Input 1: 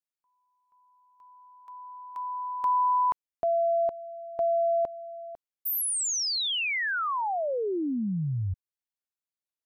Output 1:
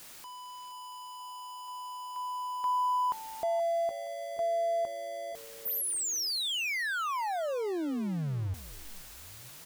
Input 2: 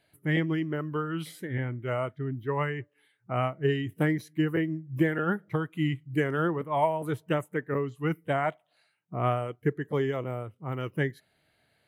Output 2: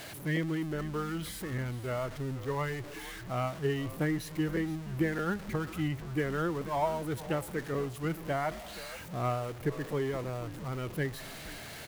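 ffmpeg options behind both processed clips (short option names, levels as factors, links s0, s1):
-filter_complex "[0:a]aeval=exprs='val(0)+0.5*0.0224*sgn(val(0))':c=same,asplit=4[s0][s1][s2][s3];[s1]adelay=474,afreqshift=-110,volume=0.178[s4];[s2]adelay=948,afreqshift=-220,volume=0.0661[s5];[s3]adelay=1422,afreqshift=-330,volume=0.0243[s6];[s0][s4][s5][s6]amix=inputs=4:normalize=0,volume=0.501"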